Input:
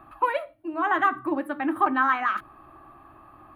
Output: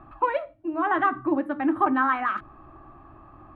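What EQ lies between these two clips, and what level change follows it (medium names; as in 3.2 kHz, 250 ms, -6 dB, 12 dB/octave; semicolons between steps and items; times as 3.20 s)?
distance through air 68 m; tilt EQ -2 dB/octave; 0.0 dB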